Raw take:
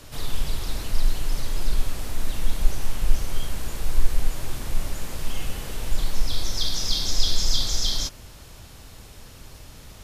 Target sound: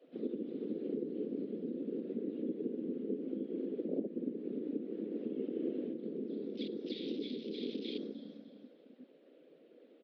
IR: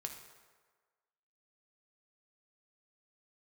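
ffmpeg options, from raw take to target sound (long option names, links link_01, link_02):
-filter_complex "[1:a]atrim=start_sample=2205,atrim=end_sample=6174[link_01];[0:a][link_01]afir=irnorm=-1:irlink=0,afftfilt=real='hypot(re,im)*cos(2*PI*random(0))':imag='hypot(re,im)*sin(2*PI*random(1))':win_size=512:overlap=0.75,aecho=1:1:301|602|903|1204:0.398|0.139|0.0488|0.0171,afwtdn=0.0158,acompressor=threshold=-35dB:ratio=3,lowshelf=frequency=600:width_type=q:width=3:gain=12,highpass=frequency=210:width_type=q:width=0.5412,highpass=frequency=210:width_type=q:width=1.307,lowpass=frequency=3500:width_type=q:width=0.5176,lowpass=frequency=3500:width_type=q:width=0.7071,lowpass=frequency=3500:width_type=q:width=1.932,afreqshift=79,volume=1.5dB"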